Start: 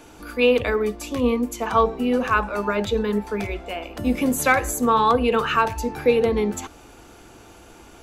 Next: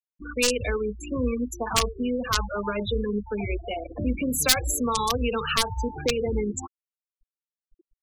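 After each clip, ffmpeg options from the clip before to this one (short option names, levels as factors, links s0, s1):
-filter_complex "[0:a]aeval=exprs='(mod(2.51*val(0)+1,2)-1)/2.51':c=same,acrossover=split=120|3000[s0][s1][s2];[s1]acompressor=threshold=0.0316:ratio=3[s3];[s0][s3][s2]amix=inputs=3:normalize=0,afftfilt=real='re*gte(hypot(re,im),0.0562)':imag='im*gte(hypot(re,im),0.0562)':win_size=1024:overlap=0.75,volume=1.33"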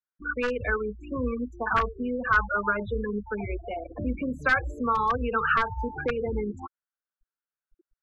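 -af "lowpass=f=1500:t=q:w=4.8,volume=0.668"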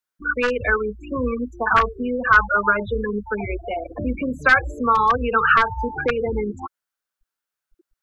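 -af "lowshelf=f=410:g=-5,volume=2.66"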